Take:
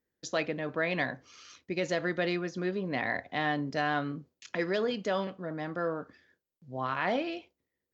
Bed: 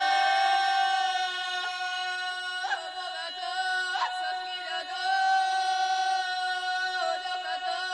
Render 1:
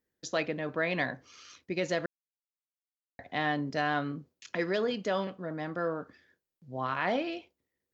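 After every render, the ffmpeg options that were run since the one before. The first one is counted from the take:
ffmpeg -i in.wav -filter_complex "[0:a]asplit=3[link_01][link_02][link_03];[link_01]atrim=end=2.06,asetpts=PTS-STARTPTS,afade=type=out:start_time=2.056:duration=0.004:curve=hsin[link_04];[link_02]atrim=start=2.06:end=3.19,asetpts=PTS-STARTPTS,volume=0[link_05];[link_03]atrim=start=3.19,asetpts=PTS-STARTPTS,afade=type=in:duration=0.004:curve=hsin[link_06];[link_04][link_05][link_06]concat=n=3:v=0:a=1" out.wav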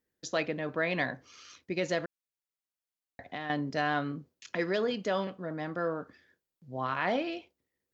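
ffmpeg -i in.wav -filter_complex "[0:a]asettb=1/sr,asplit=3[link_01][link_02][link_03];[link_01]atrim=end=2.044[link_04];[link_02]atrim=start=2.04:end=3.5,asetpts=PTS-STARTPTS,afade=type=in:duration=0.004:curve=qsin,afade=type=out:start_time=1.456:duration=0.004:curve=qsin,acompressor=threshold=-33dB:ratio=6:attack=3.2:release=140:knee=1:detection=peak[link_05];[link_03]atrim=start=3.496[link_06];[link_04][link_05]acrossfade=duration=0.004:curve1=hsin:curve2=qsin[link_07];[link_07][link_06]acrossfade=duration=0.004:curve1=qsin:curve2=hsin" out.wav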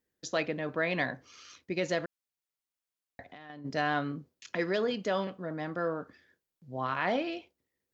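ffmpeg -i in.wav -filter_complex "[0:a]asplit=3[link_01][link_02][link_03];[link_01]afade=type=out:start_time=3.23:duration=0.02[link_04];[link_02]acompressor=threshold=-48dB:ratio=3:attack=3.2:release=140:knee=1:detection=peak,afade=type=in:start_time=3.23:duration=0.02,afade=type=out:start_time=3.64:duration=0.02[link_05];[link_03]afade=type=in:start_time=3.64:duration=0.02[link_06];[link_04][link_05][link_06]amix=inputs=3:normalize=0" out.wav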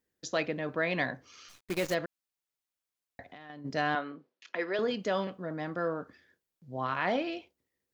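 ffmpeg -i in.wav -filter_complex "[0:a]asplit=3[link_01][link_02][link_03];[link_01]afade=type=out:start_time=1.48:duration=0.02[link_04];[link_02]acrusher=bits=7:dc=4:mix=0:aa=0.000001,afade=type=in:start_time=1.48:duration=0.02,afade=type=out:start_time=1.93:duration=0.02[link_05];[link_03]afade=type=in:start_time=1.93:duration=0.02[link_06];[link_04][link_05][link_06]amix=inputs=3:normalize=0,asettb=1/sr,asplit=3[link_07][link_08][link_09];[link_07]atrim=end=3.954[link_10];[link_08]atrim=start=3.95:end=4.79,asetpts=PTS-STARTPTS,afade=type=in:duration=0.004:curve=qsin,afade=type=out:start_time=0.836:duration=0.004:curve=qsin,highpass=390,lowpass=3400[link_11];[link_09]atrim=start=4.786[link_12];[link_10][link_11]acrossfade=duration=0.004:curve1=hsin:curve2=qsin[link_13];[link_13][link_12]acrossfade=duration=0.004:curve1=qsin:curve2=hsin" out.wav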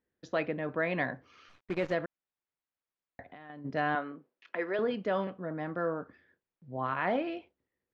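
ffmpeg -i in.wav -af "lowpass=2300" out.wav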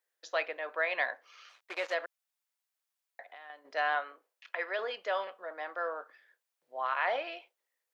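ffmpeg -i in.wav -af "highpass=frequency=560:width=0.5412,highpass=frequency=560:width=1.3066,highshelf=frequency=2800:gain=9" out.wav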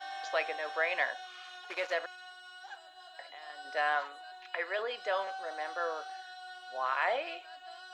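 ffmpeg -i in.wav -i bed.wav -filter_complex "[1:a]volume=-17.5dB[link_01];[0:a][link_01]amix=inputs=2:normalize=0" out.wav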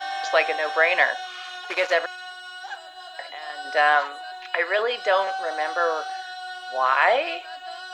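ffmpeg -i in.wav -af "volume=12dB" out.wav

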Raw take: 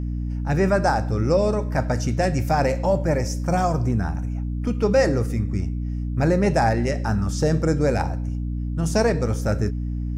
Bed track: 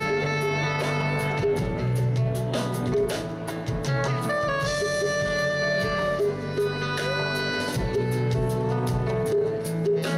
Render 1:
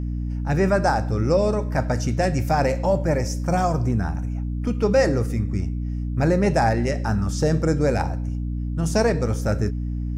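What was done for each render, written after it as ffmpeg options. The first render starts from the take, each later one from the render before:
ffmpeg -i in.wav -af anull out.wav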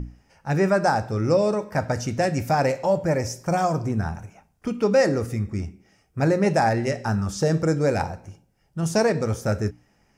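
ffmpeg -i in.wav -af "bandreject=frequency=60:width_type=h:width=6,bandreject=frequency=120:width_type=h:width=6,bandreject=frequency=180:width_type=h:width=6,bandreject=frequency=240:width_type=h:width=6,bandreject=frequency=300:width_type=h:width=6" out.wav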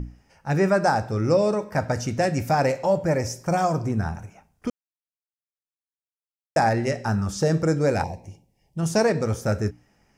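ffmpeg -i in.wav -filter_complex "[0:a]asettb=1/sr,asplit=3[link_01][link_02][link_03];[link_01]atrim=end=8.044[link_04];[link_02]atrim=start=8.04:end=8.79,asetpts=PTS-STARTPTS,afade=type=in:duration=0.004:curve=qsin,afade=type=out:start_time=0.746:duration=0.004:curve=qsin,asuperstop=centerf=1400:order=4:qfactor=1.5[link_05];[link_03]atrim=start=8.786[link_06];[link_04][link_05]acrossfade=duration=0.004:curve1=hsin:curve2=qsin[link_07];[link_07][link_06]acrossfade=duration=0.004:curve1=qsin:curve2=hsin,asplit=3[link_08][link_09][link_10];[link_08]atrim=end=4.7,asetpts=PTS-STARTPTS,afade=type=out:start_time=4.696:duration=0.004:curve=hsin[link_11];[link_09]atrim=start=4.7:end=6.56,asetpts=PTS-STARTPTS,volume=0[link_12];[link_10]atrim=start=6.56,asetpts=PTS-STARTPTS,afade=type=in:duration=0.004:curve=hsin[link_13];[link_11][link_12][link_13]concat=n=3:v=0:a=1" out.wav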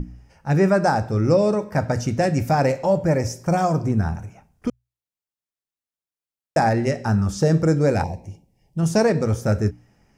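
ffmpeg -i in.wav -af "lowshelf=frequency=400:gain=5.5,bandreject=frequency=60:width_type=h:width=6,bandreject=frequency=120:width_type=h:width=6" out.wav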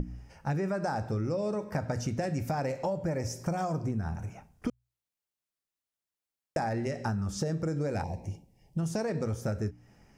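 ffmpeg -i in.wav -af "alimiter=limit=-11.5dB:level=0:latency=1:release=76,acompressor=threshold=-29dB:ratio=6" out.wav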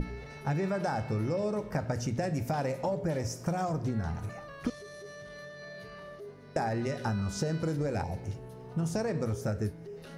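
ffmpeg -i in.wav -i bed.wav -filter_complex "[1:a]volume=-21dB[link_01];[0:a][link_01]amix=inputs=2:normalize=0" out.wav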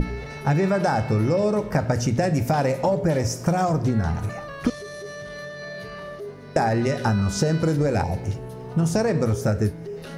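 ffmpeg -i in.wav -af "volume=10dB" out.wav

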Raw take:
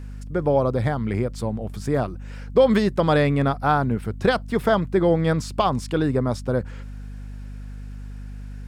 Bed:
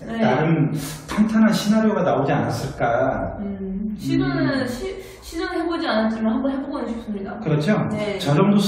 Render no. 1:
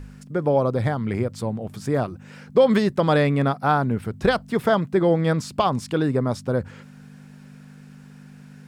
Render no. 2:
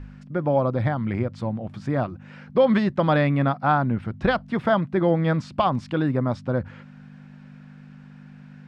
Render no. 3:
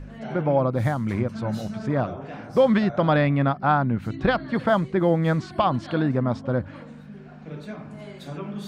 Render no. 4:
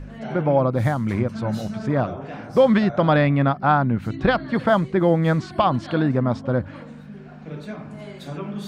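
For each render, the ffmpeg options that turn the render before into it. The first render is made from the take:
ffmpeg -i in.wav -af "bandreject=frequency=50:width_type=h:width=4,bandreject=frequency=100:width_type=h:width=4" out.wav
ffmpeg -i in.wav -af "lowpass=3200,equalizer=frequency=430:width_type=o:width=0.24:gain=-11" out.wav
ffmpeg -i in.wav -i bed.wav -filter_complex "[1:a]volume=-17.5dB[link_01];[0:a][link_01]amix=inputs=2:normalize=0" out.wav
ffmpeg -i in.wav -af "volume=2.5dB" out.wav

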